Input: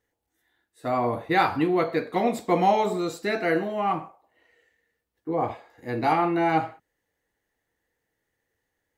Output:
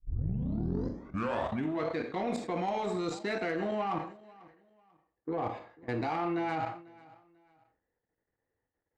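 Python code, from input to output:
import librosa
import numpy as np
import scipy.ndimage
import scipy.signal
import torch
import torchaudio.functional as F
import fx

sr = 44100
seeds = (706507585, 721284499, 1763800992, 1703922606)

p1 = fx.tape_start_head(x, sr, length_s=1.91)
p2 = scipy.signal.sosfilt(scipy.signal.butter(4, 7600.0, 'lowpass', fs=sr, output='sos'), p1)
p3 = fx.level_steps(p2, sr, step_db=16)
p4 = fx.env_lowpass(p3, sr, base_hz=1300.0, full_db=-30.0)
p5 = fx.cheby_harmonics(p4, sr, harmonics=(7,), levels_db=(-28,), full_scale_db=-21.0)
p6 = p5 + fx.echo_feedback(p5, sr, ms=493, feedback_pct=30, wet_db=-22.5, dry=0)
p7 = fx.rev_schroeder(p6, sr, rt60_s=0.41, comb_ms=26, drr_db=13.0)
y = fx.sustainer(p7, sr, db_per_s=110.0)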